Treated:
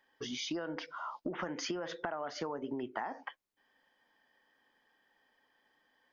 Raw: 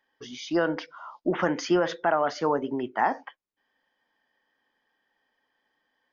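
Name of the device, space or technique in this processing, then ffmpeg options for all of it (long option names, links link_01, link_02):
serial compression, peaks first: -af "acompressor=threshold=-31dB:ratio=6,acompressor=threshold=-38dB:ratio=3,volume=2dB"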